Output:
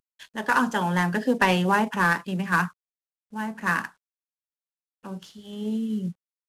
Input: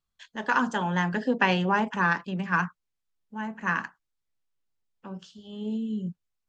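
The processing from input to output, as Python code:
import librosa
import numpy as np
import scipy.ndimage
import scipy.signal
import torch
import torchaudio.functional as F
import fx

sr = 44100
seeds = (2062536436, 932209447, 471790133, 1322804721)

y = fx.cvsd(x, sr, bps=64000)
y = F.gain(torch.from_numpy(y), 3.0).numpy()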